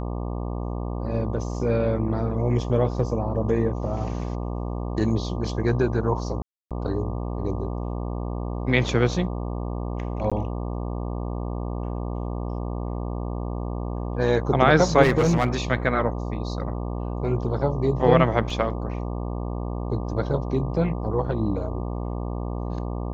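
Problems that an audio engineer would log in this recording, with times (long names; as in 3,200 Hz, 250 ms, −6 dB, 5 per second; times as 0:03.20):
mains buzz 60 Hz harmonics 20 −29 dBFS
0:06.42–0:06.71: drop-out 287 ms
0:10.30–0:10.32: drop-out 16 ms
0:15.02–0:15.48: clipping −14.5 dBFS
0:18.50: drop-out 3.1 ms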